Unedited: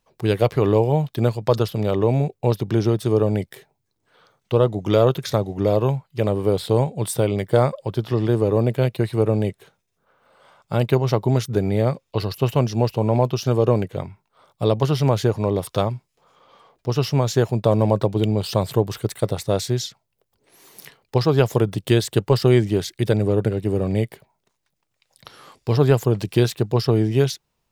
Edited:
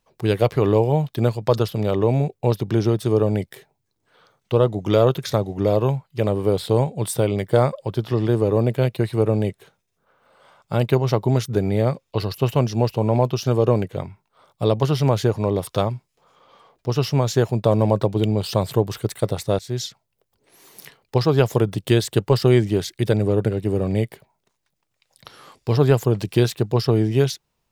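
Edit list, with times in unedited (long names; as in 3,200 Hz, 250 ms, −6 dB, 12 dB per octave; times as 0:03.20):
0:19.59–0:19.84: fade in, from −19 dB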